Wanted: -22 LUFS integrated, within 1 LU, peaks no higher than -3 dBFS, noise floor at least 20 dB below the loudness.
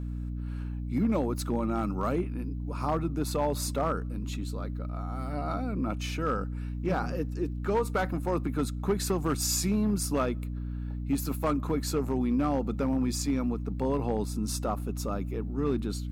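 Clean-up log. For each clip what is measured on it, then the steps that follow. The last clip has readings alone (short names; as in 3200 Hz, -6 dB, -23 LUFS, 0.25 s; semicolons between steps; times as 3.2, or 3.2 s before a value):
clipped 0.7%; flat tops at -20.0 dBFS; hum 60 Hz; harmonics up to 300 Hz; hum level -32 dBFS; loudness -30.5 LUFS; peak -20.0 dBFS; loudness target -22.0 LUFS
-> clip repair -20 dBFS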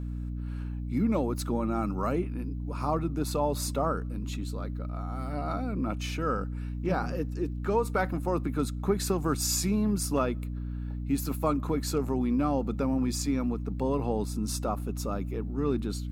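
clipped 0.0%; hum 60 Hz; harmonics up to 300 Hz; hum level -32 dBFS
-> notches 60/120/180/240/300 Hz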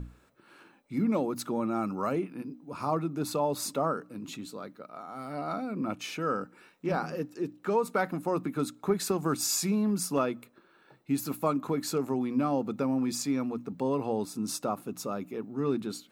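hum none; loudness -31.5 LUFS; peak -13.5 dBFS; loudness target -22.0 LUFS
-> gain +9.5 dB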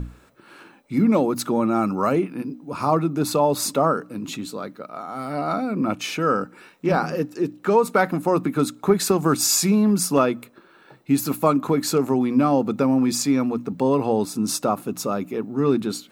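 loudness -22.0 LUFS; peak -4.0 dBFS; noise floor -53 dBFS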